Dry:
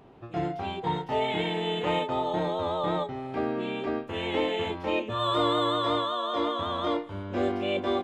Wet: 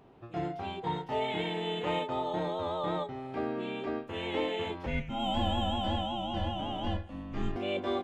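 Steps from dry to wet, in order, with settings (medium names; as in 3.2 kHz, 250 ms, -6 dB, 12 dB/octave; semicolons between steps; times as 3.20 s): 4.86–7.56 s: frequency shift -370 Hz; trim -4.5 dB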